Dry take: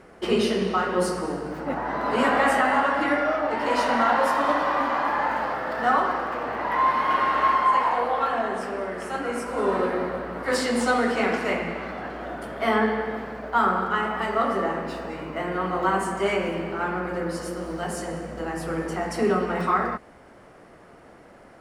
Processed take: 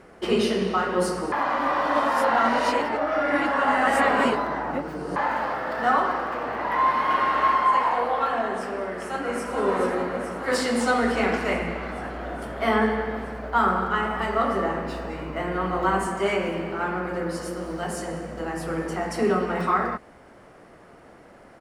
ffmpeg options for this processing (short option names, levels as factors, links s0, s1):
-filter_complex "[0:a]asplit=2[s0][s1];[s1]afade=t=in:st=8.84:d=0.01,afade=t=out:st=9.49:d=0.01,aecho=0:1:430|860|1290|1720|2150|2580|3010|3440|3870|4300|4730|5160:0.501187|0.40095|0.32076|0.256608|0.205286|0.164229|0.131383|0.105107|0.0840853|0.0672682|0.0538146|0.0430517[s2];[s0][s2]amix=inputs=2:normalize=0,asettb=1/sr,asplit=3[s3][s4][s5];[s3]atrim=end=11.024[s6];[s4]atrim=start=11.02:end=16.07,asetpts=PTS-STARTPTS,afade=t=in:d=0.004:c=qsin,afade=t=out:st=5.046:d=0.004:c=qsin,equalizer=f=73:t=o:w=1:g=11[s7];[s5]atrim=start=16.066[s8];[s6][s7]acrossfade=d=0.004:c1=hsin:c2=qsin[s9];[s9][s8]acrossfade=d=0.004:c1=qsin:c2=hsin,asplit=3[s10][s11][s12];[s10]atrim=end=1.322[s13];[s11]atrim=start=1.318:end=5.162,asetpts=PTS-STARTPTS,areverse[s14];[s12]atrim=start=5.158[s15];[s13][s14]acrossfade=d=0.004:c1=hsin:c2=hsin[s16];[s16][s15]acrossfade=d=0.004:c1=hsin:c2=hsin"